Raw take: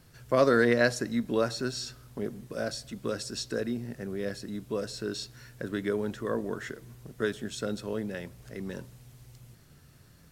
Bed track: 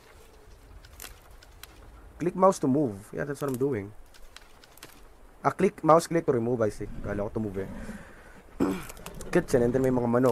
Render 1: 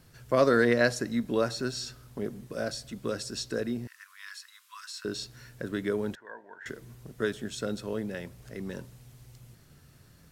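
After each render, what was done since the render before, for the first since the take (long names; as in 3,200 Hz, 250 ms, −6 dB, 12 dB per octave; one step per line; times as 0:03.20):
0:03.87–0:05.05: linear-phase brick-wall high-pass 970 Hz
0:06.15–0:06.66: pair of resonant band-passes 1,200 Hz, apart 0.79 octaves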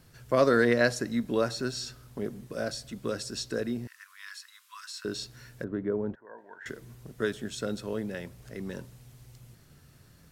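0:05.64–0:06.38: low-pass filter 1,000 Hz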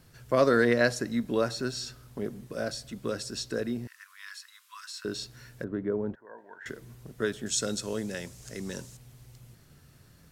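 0:07.46–0:08.97: parametric band 6,900 Hz +15 dB 1.4 octaves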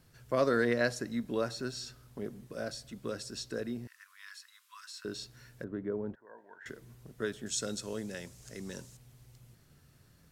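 level −5.5 dB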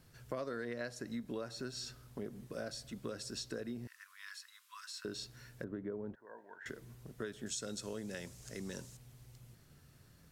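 downward compressor 6 to 1, threshold −38 dBFS, peak gain reduction 14.5 dB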